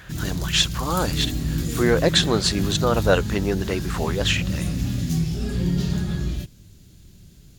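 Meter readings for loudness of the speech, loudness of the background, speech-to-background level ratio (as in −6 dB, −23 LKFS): −22.5 LKFS, −26.5 LKFS, 4.0 dB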